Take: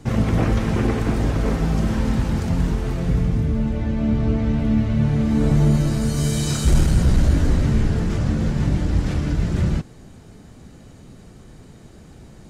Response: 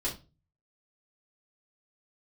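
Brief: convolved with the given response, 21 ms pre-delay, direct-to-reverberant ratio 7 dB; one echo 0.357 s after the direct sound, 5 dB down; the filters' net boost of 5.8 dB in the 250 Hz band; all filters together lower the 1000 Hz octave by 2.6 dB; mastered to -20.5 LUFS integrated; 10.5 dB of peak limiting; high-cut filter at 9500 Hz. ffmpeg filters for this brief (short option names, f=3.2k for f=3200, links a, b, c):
-filter_complex "[0:a]lowpass=9.5k,equalizer=f=250:t=o:g=7.5,equalizer=f=1k:t=o:g=-4,alimiter=limit=-14dB:level=0:latency=1,aecho=1:1:357:0.562,asplit=2[a][b];[1:a]atrim=start_sample=2205,adelay=21[c];[b][c]afir=irnorm=-1:irlink=0,volume=-11.5dB[d];[a][d]amix=inputs=2:normalize=0"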